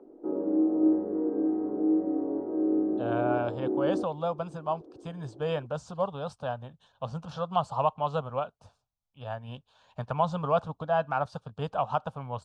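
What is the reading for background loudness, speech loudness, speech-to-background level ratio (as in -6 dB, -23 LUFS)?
-28.5 LUFS, -32.0 LUFS, -3.5 dB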